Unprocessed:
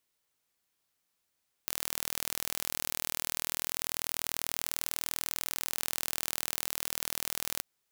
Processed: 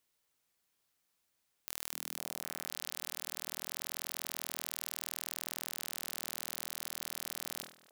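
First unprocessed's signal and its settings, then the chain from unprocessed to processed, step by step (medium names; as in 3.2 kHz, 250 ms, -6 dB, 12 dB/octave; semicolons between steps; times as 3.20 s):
pulse train 40.2 per s, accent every 0, -5.5 dBFS 5.94 s
peak limiter -14 dBFS; repeats whose band climbs or falls 253 ms, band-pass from 210 Hz, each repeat 1.4 oct, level -9 dB; decay stretcher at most 130 dB/s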